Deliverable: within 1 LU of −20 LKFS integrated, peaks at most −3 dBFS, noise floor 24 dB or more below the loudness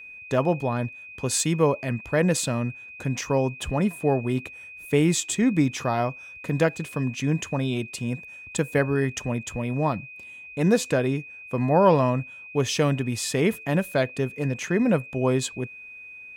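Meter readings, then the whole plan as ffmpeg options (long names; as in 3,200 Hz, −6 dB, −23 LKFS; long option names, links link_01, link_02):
interfering tone 2,500 Hz; level of the tone −40 dBFS; integrated loudness −25.0 LKFS; sample peak −7.0 dBFS; target loudness −20.0 LKFS
→ -af "bandreject=frequency=2500:width=30"
-af "volume=5dB,alimiter=limit=-3dB:level=0:latency=1"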